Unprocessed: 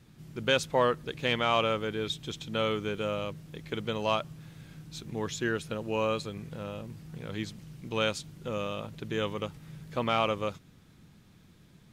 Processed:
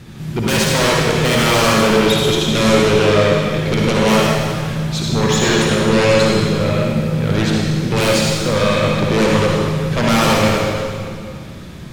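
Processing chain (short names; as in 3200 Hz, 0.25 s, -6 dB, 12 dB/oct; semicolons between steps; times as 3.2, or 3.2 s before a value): in parallel at -6 dB: sine folder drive 18 dB, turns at -13 dBFS; on the sum: high shelf 7400 Hz -5.5 dB; reverb RT60 2.3 s, pre-delay 51 ms, DRR -3.5 dB; gain +2.5 dB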